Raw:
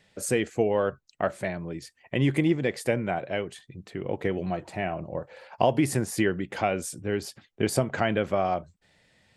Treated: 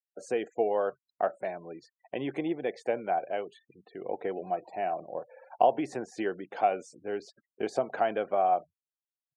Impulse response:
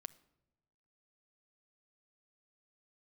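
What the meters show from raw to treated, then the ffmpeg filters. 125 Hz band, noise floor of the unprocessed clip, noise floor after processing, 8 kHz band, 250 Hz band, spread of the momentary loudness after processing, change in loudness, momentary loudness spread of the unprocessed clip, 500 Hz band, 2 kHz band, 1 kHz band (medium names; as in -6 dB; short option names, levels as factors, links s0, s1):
-19.5 dB, -69 dBFS, under -85 dBFS, under -15 dB, -9.0 dB, 14 LU, -3.5 dB, 12 LU, -2.5 dB, -8.5 dB, +2.0 dB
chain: -af "afftfilt=real='re*gte(hypot(re,im),0.00708)':imag='im*gte(hypot(re,im),0.00708)':win_size=1024:overlap=0.75,highpass=330,equalizer=f=450:t=q:w=4:g=3,equalizer=f=740:t=q:w=4:g=9,equalizer=f=2000:t=q:w=4:g=-7,equalizer=f=3000:t=q:w=4:g=-5,equalizer=f=4900:t=q:w=4:g=-8,lowpass=f=5700:w=0.5412,lowpass=f=5700:w=1.3066,volume=0.562"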